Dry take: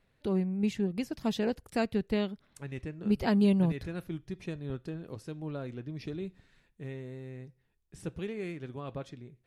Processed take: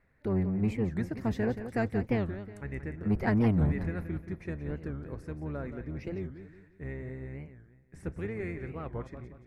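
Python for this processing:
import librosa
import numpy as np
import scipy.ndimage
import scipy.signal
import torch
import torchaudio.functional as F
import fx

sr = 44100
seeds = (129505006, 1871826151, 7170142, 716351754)

y = fx.octave_divider(x, sr, octaves=1, level_db=-2.0)
y = 10.0 ** (-19.0 / 20.0) * np.tanh(y / 10.0 ** (-19.0 / 20.0))
y = fx.high_shelf_res(y, sr, hz=2500.0, db=-7.5, q=3.0)
y = fx.echo_feedback(y, sr, ms=177, feedback_pct=39, wet_db=-10.5)
y = fx.record_warp(y, sr, rpm=45.0, depth_cents=250.0)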